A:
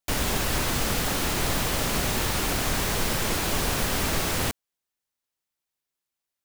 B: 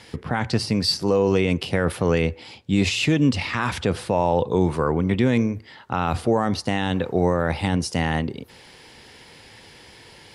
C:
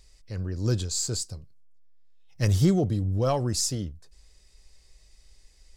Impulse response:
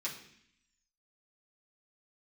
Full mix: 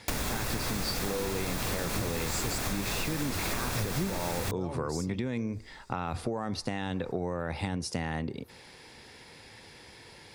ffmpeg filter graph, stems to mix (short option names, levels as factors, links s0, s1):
-filter_complex "[0:a]volume=1.26[s0];[1:a]volume=0.631,asplit=2[s1][s2];[2:a]adelay=1350,volume=1[s3];[s2]apad=whole_len=313858[s4];[s3][s4]sidechaincompress=threshold=0.0224:ratio=10:attack=16:release=117[s5];[s0][s1]amix=inputs=2:normalize=0,acompressor=threshold=0.0631:ratio=2.5,volume=1[s6];[s5][s6]amix=inputs=2:normalize=0,bandreject=f=3000:w=9.9,acompressor=threshold=0.0398:ratio=6"